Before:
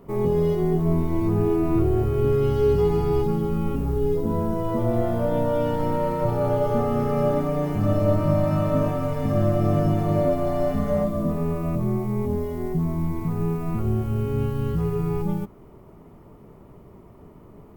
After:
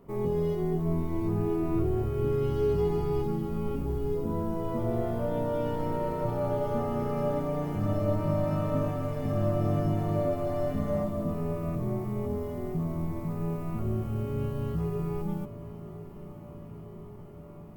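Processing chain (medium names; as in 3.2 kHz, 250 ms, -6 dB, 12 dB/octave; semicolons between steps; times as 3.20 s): echo that smears into a reverb 1046 ms, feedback 74%, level -15 dB; trim -7 dB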